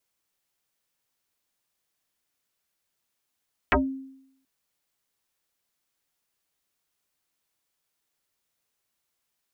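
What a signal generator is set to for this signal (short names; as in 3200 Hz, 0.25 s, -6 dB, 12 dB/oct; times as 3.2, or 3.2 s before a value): FM tone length 0.73 s, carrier 267 Hz, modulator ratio 1.24, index 8.3, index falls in 0.18 s exponential, decay 0.77 s, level -15 dB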